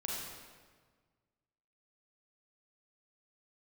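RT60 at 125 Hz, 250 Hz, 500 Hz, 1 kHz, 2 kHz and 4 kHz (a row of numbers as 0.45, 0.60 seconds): 2.1, 1.8, 1.6, 1.5, 1.3, 1.2 seconds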